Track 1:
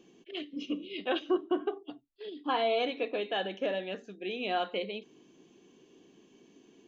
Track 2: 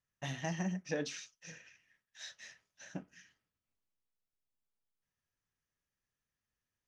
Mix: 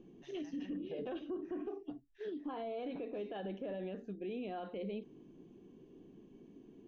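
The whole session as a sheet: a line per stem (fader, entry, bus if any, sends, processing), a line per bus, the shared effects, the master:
-5.5 dB, 0.00 s, no send, peak limiter -29 dBFS, peak gain reduction 10.5 dB
-1.5 dB, 0.00 s, no send, LFO band-pass sine 0.66 Hz 380–5400 Hz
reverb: none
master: tilt EQ -4.5 dB/octave; peak limiter -34 dBFS, peak gain reduction 10 dB

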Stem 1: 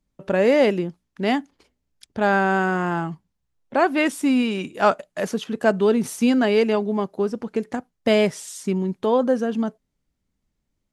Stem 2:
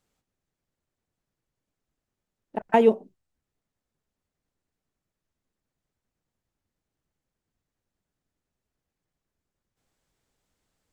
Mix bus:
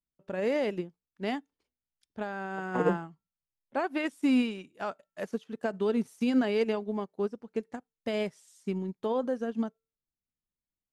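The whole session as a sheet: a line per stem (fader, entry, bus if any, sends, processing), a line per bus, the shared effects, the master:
+0.5 dB, 0.00 s, no send, peak limiter -14.5 dBFS, peak gain reduction 9.5 dB
-3.5 dB, 0.00 s, no send, vocoder on a broken chord major triad, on B2, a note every 90 ms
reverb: none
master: feedback comb 450 Hz, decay 0.45 s, mix 30%; upward expansion 2.5:1, over -34 dBFS

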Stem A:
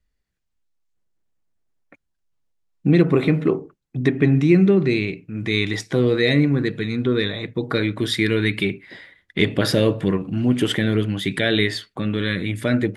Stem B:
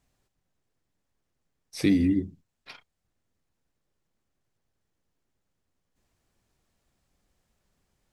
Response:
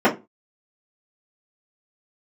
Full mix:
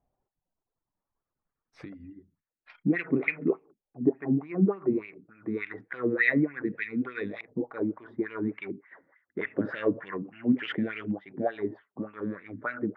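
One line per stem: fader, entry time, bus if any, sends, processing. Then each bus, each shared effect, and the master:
-2.0 dB, 0.00 s, no send, local Wiener filter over 9 samples; peaking EQ 3 kHz -5.5 dB 0.99 oct; wah-wah 3.4 Hz 220–2700 Hz, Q 3.1
-5.5 dB, 0.00 s, no send, reverb removal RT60 1.9 s; compression 6:1, threshold -30 dBFS, peak gain reduction 11.5 dB; auto duck -7 dB, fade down 0.35 s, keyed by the first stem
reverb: none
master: treble shelf 2.7 kHz +11 dB; LFO low-pass saw up 0.27 Hz 740–2600 Hz

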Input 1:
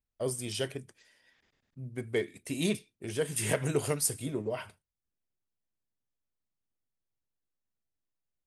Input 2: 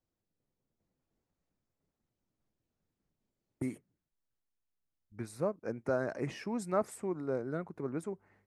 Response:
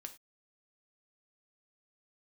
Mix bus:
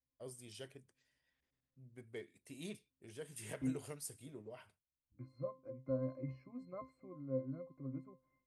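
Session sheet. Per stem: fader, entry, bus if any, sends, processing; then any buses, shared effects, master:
-17.5 dB, 0.00 s, no send, none
+2.5 dB, 0.00 s, no send, pitch-class resonator C, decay 0.24 s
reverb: none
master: none

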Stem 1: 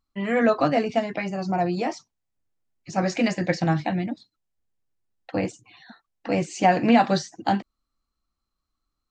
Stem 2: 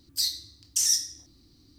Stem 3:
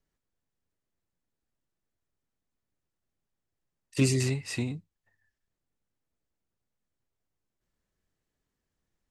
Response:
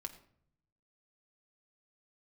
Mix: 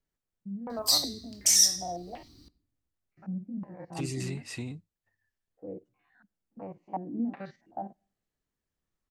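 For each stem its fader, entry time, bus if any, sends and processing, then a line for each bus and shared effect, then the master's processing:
-19.5 dB, 0.30 s, send -20.5 dB, spectrogram pixelated in time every 50 ms; step-sequenced low-pass 2.7 Hz 200–3300 Hz
0.0 dB, 0.70 s, send -4.5 dB, none
-4.5 dB, 0.00 s, no send, peak limiter -22 dBFS, peak gain reduction 9.5 dB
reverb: on, RT60 0.65 s, pre-delay 5 ms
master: none

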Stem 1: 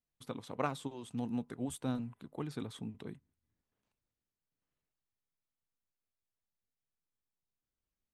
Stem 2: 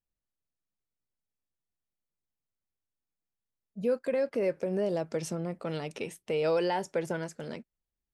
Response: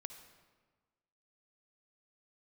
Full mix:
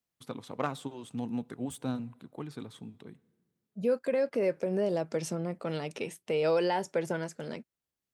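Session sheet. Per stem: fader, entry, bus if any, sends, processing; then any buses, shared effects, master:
+1.5 dB, 0.00 s, send -14 dB, self-modulated delay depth 0.08 ms; auto duck -10 dB, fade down 1.85 s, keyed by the second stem
+0.5 dB, 0.00 s, no send, none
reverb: on, RT60 1.4 s, pre-delay 50 ms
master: high-pass 92 Hz

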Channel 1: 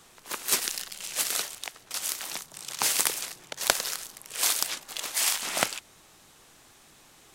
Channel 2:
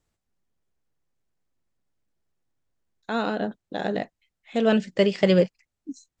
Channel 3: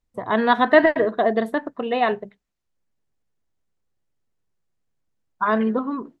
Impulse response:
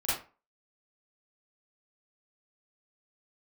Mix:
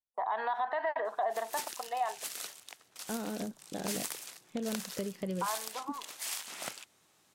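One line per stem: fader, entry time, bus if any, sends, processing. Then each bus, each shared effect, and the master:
-12.0 dB, 1.05 s, no send, high-pass 99 Hz; saturation -9 dBFS, distortion -18 dB
-13.0 dB, 0.00 s, no send, expander -40 dBFS; bass shelf 490 Hz +12 dB; compression, threshold -21 dBFS, peak gain reduction 14.5 dB
1.51 s -7.5 dB -> 1.83 s -14.5 dB, 0.00 s, no send, gate with hold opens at -31 dBFS; compression 3:1, threshold -21 dBFS, peak gain reduction 10 dB; resonant high-pass 820 Hz, resonance Q 4.9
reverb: none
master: peak limiter -23 dBFS, peak gain reduction 11 dB

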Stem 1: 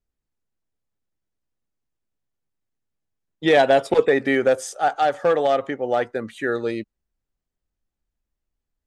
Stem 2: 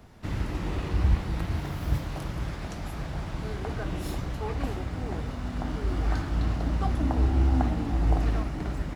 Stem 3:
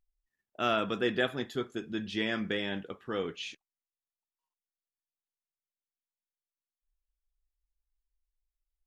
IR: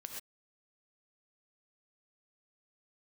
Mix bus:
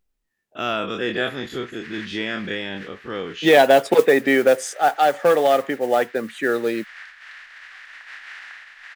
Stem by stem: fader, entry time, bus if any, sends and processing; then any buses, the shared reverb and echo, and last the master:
+2.5 dB, 0.00 s, no send, high-pass 150 Hz 24 dB/octave; modulation noise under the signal 25 dB
-4.5 dB, 0.90 s, no send, spectral contrast reduction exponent 0.42; ladder band-pass 1.9 kHz, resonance 70%
+1.5 dB, 0.00 s, no send, every event in the spectrogram widened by 60 ms; de-esser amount 70%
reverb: none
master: peaking EQ 2.6 kHz +2 dB

